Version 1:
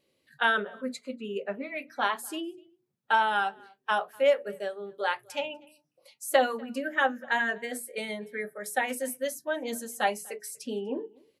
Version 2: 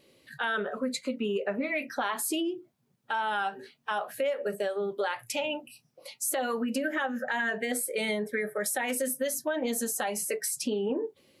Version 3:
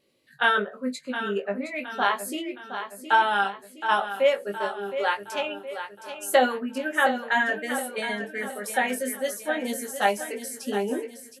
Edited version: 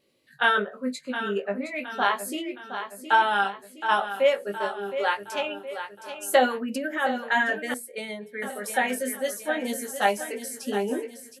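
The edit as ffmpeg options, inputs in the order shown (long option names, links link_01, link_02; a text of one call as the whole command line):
ffmpeg -i take0.wav -i take1.wav -i take2.wav -filter_complex "[2:a]asplit=3[link_01][link_02][link_03];[link_01]atrim=end=6.7[link_04];[1:a]atrim=start=6.54:end=7.13[link_05];[link_02]atrim=start=6.97:end=7.742[link_06];[0:a]atrim=start=7.738:end=8.422[link_07];[link_03]atrim=start=8.418[link_08];[link_04][link_05]acrossfade=duration=0.16:curve1=tri:curve2=tri[link_09];[link_09][link_06]acrossfade=duration=0.16:curve1=tri:curve2=tri[link_10];[link_10][link_07]acrossfade=duration=0.004:curve1=hsin:curve2=hsin[link_11];[link_11][link_08]acrossfade=duration=0.004:curve1=hsin:curve2=hsin" out.wav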